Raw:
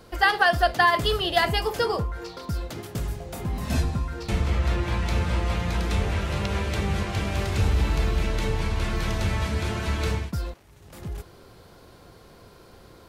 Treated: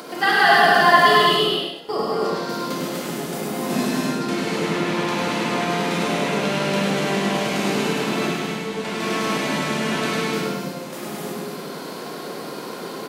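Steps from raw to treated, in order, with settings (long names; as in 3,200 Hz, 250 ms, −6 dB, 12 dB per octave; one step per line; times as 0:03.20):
sub-octave generator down 2 octaves, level +2 dB
Butterworth high-pass 170 Hz 36 dB per octave
0:08.27–0:08.85: noise gate −27 dBFS, range −13 dB
upward compression, threshold −28 dBFS
0:01.34–0:01.89: gate with flip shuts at −20 dBFS, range −29 dB
repeating echo 101 ms, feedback 29%, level −4 dB
reverb whose tail is shaped and stops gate 370 ms flat, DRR −6.5 dB
level −1 dB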